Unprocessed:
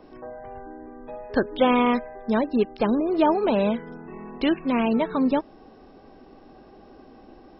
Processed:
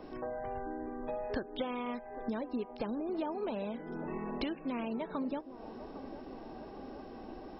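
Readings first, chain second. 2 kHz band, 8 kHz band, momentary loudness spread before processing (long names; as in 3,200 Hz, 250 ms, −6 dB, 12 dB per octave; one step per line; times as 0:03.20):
−14.5 dB, can't be measured, 19 LU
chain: downward compressor 10 to 1, threshold −35 dBFS, peak gain reduction 20.5 dB
on a send: delay with a band-pass on its return 805 ms, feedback 68%, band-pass 520 Hz, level −12 dB
on the sum: level +1 dB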